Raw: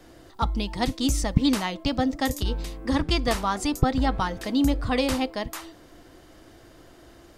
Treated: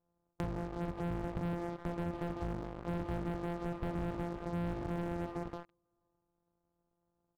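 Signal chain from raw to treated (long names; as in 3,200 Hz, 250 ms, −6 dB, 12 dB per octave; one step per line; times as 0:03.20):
samples sorted by size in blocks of 256 samples
noise gate −38 dBFS, range −16 dB
low-shelf EQ 230 Hz −6 dB
repeating echo 160 ms, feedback 36%, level −17 dB
on a send at −20.5 dB: convolution reverb RT60 1.2 s, pre-delay 57 ms
on the sum: asymmetric clip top −23 dBFS, bottom −6.5 dBFS
low-pass filter 1,100 Hz 24 dB per octave
in parallel at −8.5 dB: dead-zone distortion −41.5 dBFS
on the sum: hum removal 48.44 Hz, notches 28
leveller curve on the samples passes 5
downward compressor 3 to 1, threshold −44 dBFS, peak gain reduction 25.5 dB
level −1.5 dB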